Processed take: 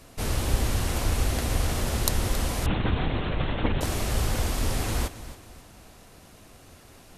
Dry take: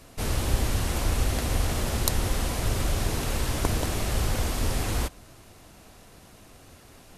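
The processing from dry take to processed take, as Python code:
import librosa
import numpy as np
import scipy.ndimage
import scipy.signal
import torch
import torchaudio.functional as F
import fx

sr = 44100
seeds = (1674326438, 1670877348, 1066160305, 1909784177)

p1 = x + fx.echo_feedback(x, sr, ms=273, feedback_pct=36, wet_db=-14.5, dry=0)
y = fx.lpc_vocoder(p1, sr, seeds[0], excitation='whisper', order=10, at=(2.66, 3.81))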